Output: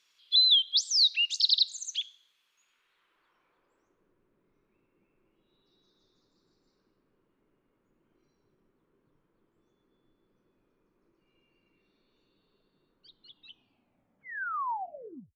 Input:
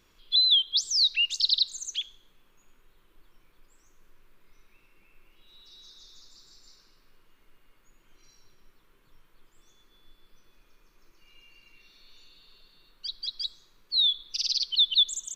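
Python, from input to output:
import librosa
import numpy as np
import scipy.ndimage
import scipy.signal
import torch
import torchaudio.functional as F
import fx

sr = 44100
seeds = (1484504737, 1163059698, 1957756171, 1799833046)

y = fx.tape_stop_end(x, sr, length_s=2.34)
y = fx.filter_sweep_bandpass(y, sr, from_hz=4500.0, to_hz=270.0, start_s=2.51, end_s=4.18, q=0.81)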